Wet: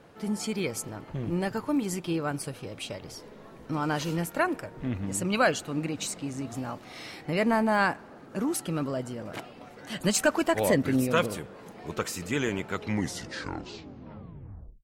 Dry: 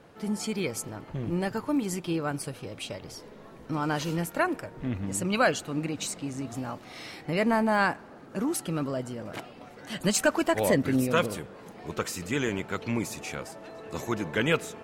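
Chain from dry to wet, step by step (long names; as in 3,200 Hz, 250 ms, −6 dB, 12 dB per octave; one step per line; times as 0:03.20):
turntable brake at the end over 2.11 s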